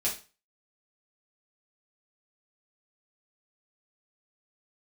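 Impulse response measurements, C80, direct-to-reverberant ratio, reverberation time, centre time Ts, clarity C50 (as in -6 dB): 15.5 dB, -7.0 dB, 0.35 s, 25 ms, 9.0 dB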